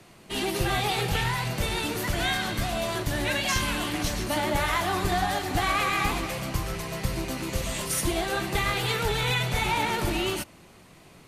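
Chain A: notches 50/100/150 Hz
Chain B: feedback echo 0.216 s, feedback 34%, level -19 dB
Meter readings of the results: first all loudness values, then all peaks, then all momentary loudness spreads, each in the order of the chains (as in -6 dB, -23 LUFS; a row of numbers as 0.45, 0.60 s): -27.0, -27.0 LUFS; -14.5, -14.5 dBFS; 6, 6 LU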